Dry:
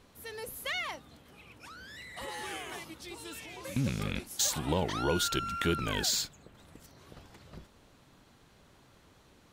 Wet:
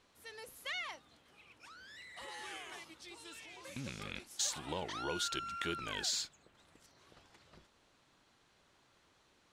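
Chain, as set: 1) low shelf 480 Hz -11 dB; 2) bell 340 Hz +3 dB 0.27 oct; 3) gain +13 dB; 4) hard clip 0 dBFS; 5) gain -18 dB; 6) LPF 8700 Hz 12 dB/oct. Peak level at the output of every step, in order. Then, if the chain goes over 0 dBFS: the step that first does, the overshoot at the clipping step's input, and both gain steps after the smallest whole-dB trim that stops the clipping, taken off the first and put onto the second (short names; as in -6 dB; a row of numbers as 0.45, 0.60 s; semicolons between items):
-15.0, -15.0, -2.0, -2.0, -20.0, -21.5 dBFS; no overload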